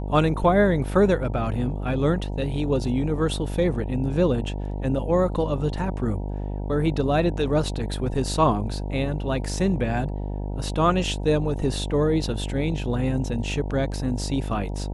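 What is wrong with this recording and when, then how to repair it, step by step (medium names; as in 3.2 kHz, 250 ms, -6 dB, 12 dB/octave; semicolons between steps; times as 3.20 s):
buzz 50 Hz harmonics 19 -29 dBFS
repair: de-hum 50 Hz, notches 19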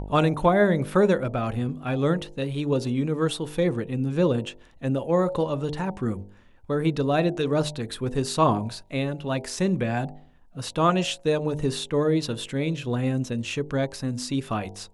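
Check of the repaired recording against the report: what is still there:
nothing left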